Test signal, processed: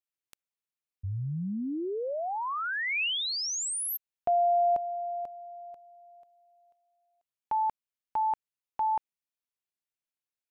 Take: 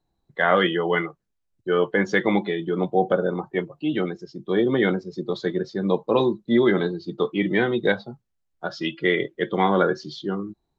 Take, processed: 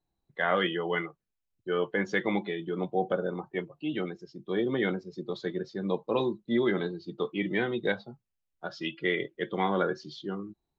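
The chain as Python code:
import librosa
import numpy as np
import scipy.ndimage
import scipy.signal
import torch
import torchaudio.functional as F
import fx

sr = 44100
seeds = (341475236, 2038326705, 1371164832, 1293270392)

y = fx.peak_eq(x, sr, hz=2600.0, db=4.0, octaves=0.59)
y = y * librosa.db_to_amplitude(-8.0)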